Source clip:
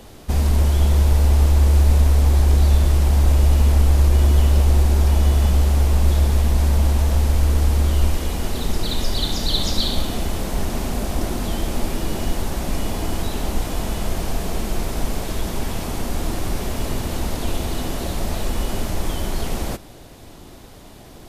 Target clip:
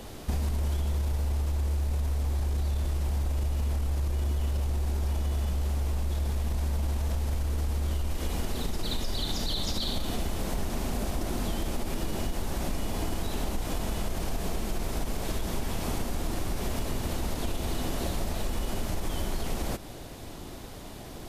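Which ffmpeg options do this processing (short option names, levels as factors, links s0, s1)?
-af "alimiter=limit=0.224:level=0:latency=1:release=33,acompressor=threshold=0.0501:ratio=6"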